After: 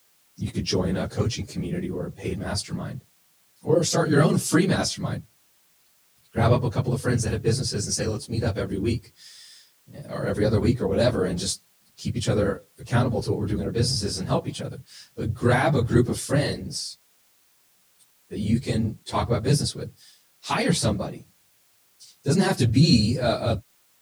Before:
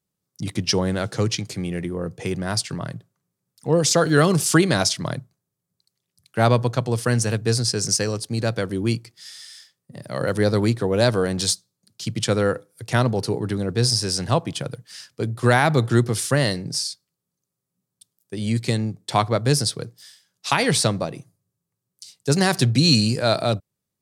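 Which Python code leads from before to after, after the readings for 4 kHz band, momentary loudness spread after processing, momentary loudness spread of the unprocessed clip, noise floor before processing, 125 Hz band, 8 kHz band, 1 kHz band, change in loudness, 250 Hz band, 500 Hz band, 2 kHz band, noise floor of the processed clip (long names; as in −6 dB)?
−6.0 dB, 14 LU, 14 LU, −82 dBFS, −1.5 dB, −6.0 dB, −5.0 dB, −3.0 dB, −1.0 dB, −2.5 dB, −5.5 dB, −62 dBFS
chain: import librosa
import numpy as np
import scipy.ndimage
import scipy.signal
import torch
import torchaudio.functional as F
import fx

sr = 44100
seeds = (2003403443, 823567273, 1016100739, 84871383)

y = fx.phase_scramble(x, sr, seeds[0], window_ms=50)
y = fx.low_shelf(y, sr, hz=440.0, db=7.5)
y = fx.dmg_noise_colour(y, sr, seeds[1], colour='white', level_db=-56.0)
y = fx.low_shelf(y, sr, hz=130.0, db=-4.5)
y = y * librosa.db_to_amplitude(-6.0)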